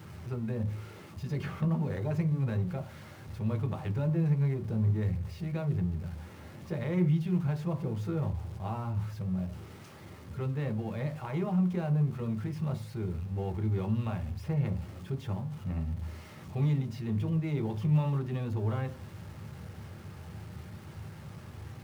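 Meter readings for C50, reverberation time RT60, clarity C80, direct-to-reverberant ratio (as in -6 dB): 15.5 dB, 0.40 s, 20.5 dB, 4.0 dB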